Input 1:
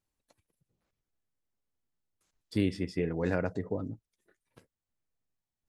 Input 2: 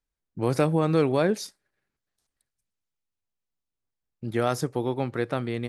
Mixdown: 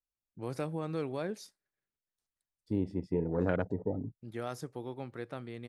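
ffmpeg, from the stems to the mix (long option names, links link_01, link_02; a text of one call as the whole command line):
ffmpeg -i stem1.wav -i stem2.wav -filter_complex "[0:a]afwtdn=0.0126,adelay=150,volume=0dB[link_01];[1:a]volume=-13.5dB,asplit=2[link_02][link_03];[link_03]apad=whole_len=257407[link_04];[link_01][link_04]sidechaincompress=threshold=-58dB:ratio=4:attack=16:release=1010[link_05];[link_05][link_02]amix=inputs=2:normalize=0" out.wav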